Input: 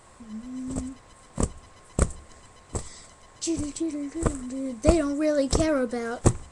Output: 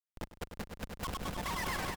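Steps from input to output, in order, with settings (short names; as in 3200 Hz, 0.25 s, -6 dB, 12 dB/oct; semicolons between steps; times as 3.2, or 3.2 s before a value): reverb removal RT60 0.84 s; low shelf 130 Hz -7 dB; harmoniser -4 st -13 dB, +5 st -16 dB; Schmitt trigger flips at -29.5 dBFS; wide varispeed 3.32×; on a send: swelling echo 0.1 s, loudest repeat 5, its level -8 dB; on the sum: gain -7 dB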